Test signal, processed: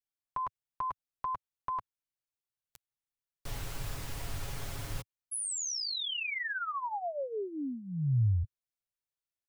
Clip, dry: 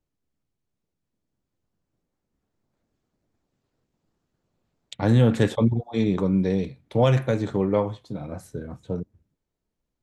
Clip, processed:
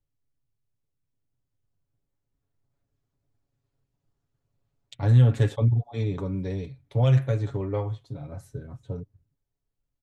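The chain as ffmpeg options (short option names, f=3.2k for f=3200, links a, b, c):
-af "lowshelf=f=140:t=q:w=1.5:g=8.5,aecho=1:1:7.2:0.58,volume=-8dB"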